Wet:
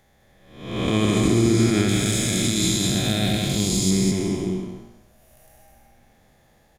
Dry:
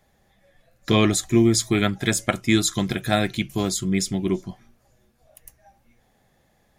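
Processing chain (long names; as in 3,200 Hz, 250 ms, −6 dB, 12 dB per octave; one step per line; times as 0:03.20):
spectrum smeared in time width 397 ms
0:01.88–0:03.91: drawn EQ curve 160 Hz 0 dB, 1,500 Hz −8 dB, 4,600 Hz +7 dB
brickwall limiter −16.5 dBFS, peak gain reduction 4.5 dB
single-tap delay 203 ms −4.5 dB
level +5.5 dB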